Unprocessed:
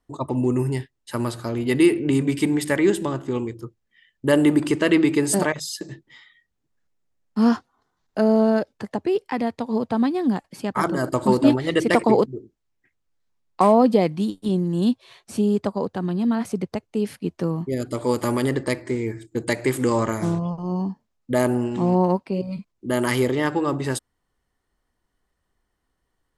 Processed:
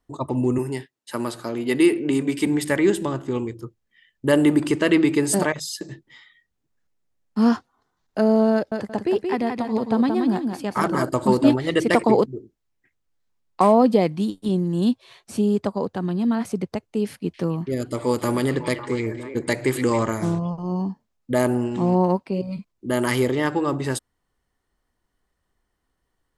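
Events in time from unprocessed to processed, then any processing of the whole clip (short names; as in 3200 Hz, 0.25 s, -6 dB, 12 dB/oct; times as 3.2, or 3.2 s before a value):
0.58–2.47 HPF 200 Hz
8.54–11.04 feedback echo 0.176 s, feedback 24%, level -5 dB
17.06–20.03 delay with a stepping band-pass 0.276 s, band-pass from 2900 Hz, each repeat -1.4 oct, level -4.5 dB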